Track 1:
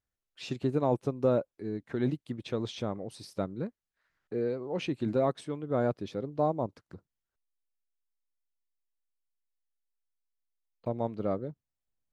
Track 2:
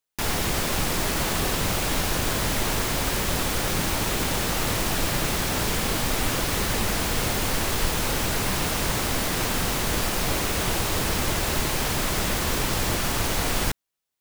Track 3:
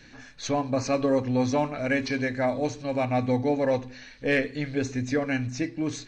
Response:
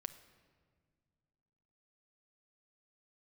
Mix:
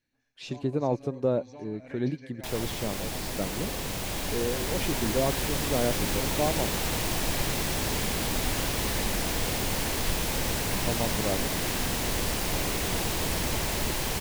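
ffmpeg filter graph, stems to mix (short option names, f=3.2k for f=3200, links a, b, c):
-filter_complex "[0:a]volume=0.5dB[a];[1:a]dynaudnorm=f=520:g=9:m=6dB,adelay=2250,volume=-10.5dB,asplit=2[b][c];[c]volume=-4.5dB[d];[2:a]agate=range=-11dB:threshold=-35dB:ratio=16:detection=peak,acompressor=threshold=-21dB:ratio=6,volume=-20dB,asplit=2[e][f];[f]volume=-7.5dB[g];[d][g]amix=inputs=2:normalize=0,aecho=0:1:116:1[h];[a][b][e][h]amix=inputs=4:normalize=0,equalizer=f=1.3k:t=o:w=0.51:g=-5"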